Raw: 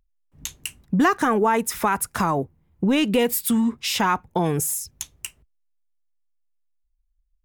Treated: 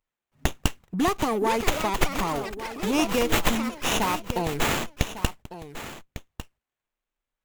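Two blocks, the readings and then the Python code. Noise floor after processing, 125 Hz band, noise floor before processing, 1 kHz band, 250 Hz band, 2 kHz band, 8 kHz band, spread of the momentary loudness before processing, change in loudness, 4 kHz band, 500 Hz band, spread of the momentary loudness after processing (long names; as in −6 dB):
below −85 dBFS, −2.0 dB, −70 dBFS, −3.5 dB, −5.5 dB, −1.0 dB, −4.5 dB, 16 LU, −4.0 dB, +0.5 dB, −2.5 dB, 17 LU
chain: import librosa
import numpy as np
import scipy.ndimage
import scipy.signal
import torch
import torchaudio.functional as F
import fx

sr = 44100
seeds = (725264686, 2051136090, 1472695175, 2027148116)

p1 = fx.tilt_eq(x, sr, slope=3.5)
p2 = fx.rider(p1, sr, range_db=5, speed_s=0.5)
p3 = p1 + F.gain(torch.from_numpy(p2), -2.5).numpy()
p4 = fx.echo_pitch(p3, sr, ms=759, semitones=6, count=3, db_per_echo=-6.0)
p5 = fx.env_flanger(p4, sr, rest_ms=8.5, full_db=-16.0)
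p6 = p5 + fx.echo_single(p5, sr, ms=1151, db=-13.0, dry=0)
p7 = fx.running_max(p6, sr, window=9)
y = F.gain(torch.from_numpy(p7), -5.5).numpy()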